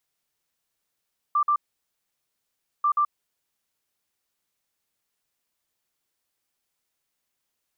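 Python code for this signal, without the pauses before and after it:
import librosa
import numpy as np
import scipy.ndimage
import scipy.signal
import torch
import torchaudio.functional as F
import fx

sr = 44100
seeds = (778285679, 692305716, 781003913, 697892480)

y = fx.beep_pattern(sr, wave='sine', hz=1180.0, on_s=0.08, off_s=0.05, beeps=2, pause_s=1.28, groups=2, level_db=-18.0)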